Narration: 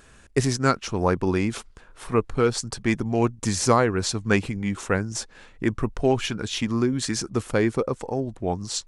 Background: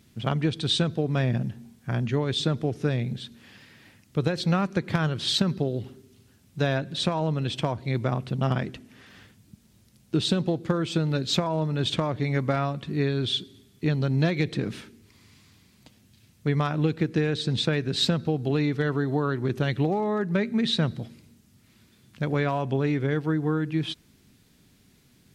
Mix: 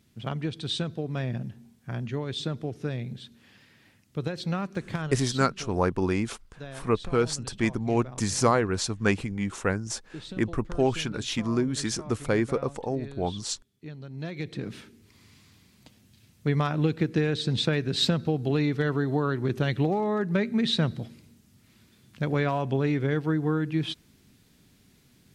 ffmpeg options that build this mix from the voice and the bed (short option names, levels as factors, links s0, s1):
-filter_complex "[0:a]adelay=4750,volume=0.708[s0];[1:a]volume=3.16,afade=t=out:st=4.92:d=0.5:silence=0.298538,afade=t=in:st=14.12:d=1.1:silence=0.158489[s1];[s0][s1]amix=inputs=2:normalize=0"